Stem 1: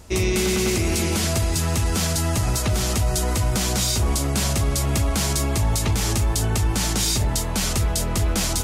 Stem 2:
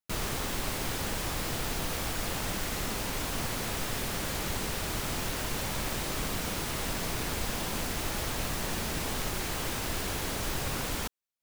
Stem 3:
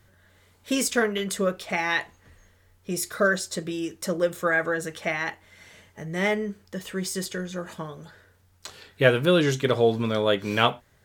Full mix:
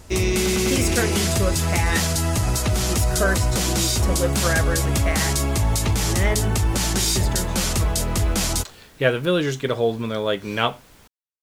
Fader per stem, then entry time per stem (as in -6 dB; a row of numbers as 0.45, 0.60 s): +0.5, -17.5, -0.5 dB; 0.00, 0.00, 0.00 s